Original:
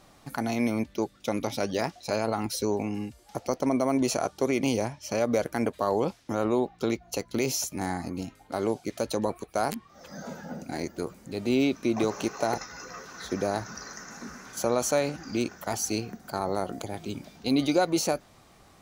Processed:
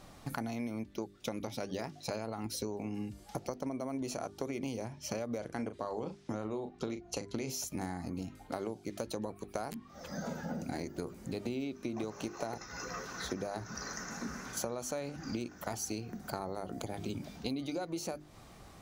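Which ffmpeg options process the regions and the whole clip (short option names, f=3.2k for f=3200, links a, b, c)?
-filter_complex "[0:a]asettb=1/sr,asplit=3[a][b][c];[a]atrim=end=5.384[d];[b]atrim=start=5.38:end=7.5,asetpts=PTS-STARTPTS,afade=t=in:d=0.004:c=qsin,afade=t=out:st=2.116:d=0.004:c=qsin,lowpass=f=9.6k:w=0.5412,lowpass=f=9.6k:w=1.3066,asplit=2[e][f];[f]adelay=38,volume=-10dB[g];[e][g]amix=inputs=2:normalize=0,atrim=end_sample=93492[h];[c]atrim=start=7.496[i];[d][h]acrossfade=d=0.004:c1=hsin:c2=qsin[j];[j][i]acrossfade=d=0.004:c1=qsin:c2=hsin,lowshelf=f=270:g=6,bandreject=f=50:t=h:w=6,bandreject=f=100:t=h:w=6,bandreject=f=150:t=h:w=6,bandreject=f=200:t=h:w=6,bandreject=f=250:t=h:w=6,bandreject=f=300:t=h:w=6,bandreject=f=350:t=h:w=6,bandreject=f=400:t=h:w=6,acompressor=threshold=-34dB:ratio=12"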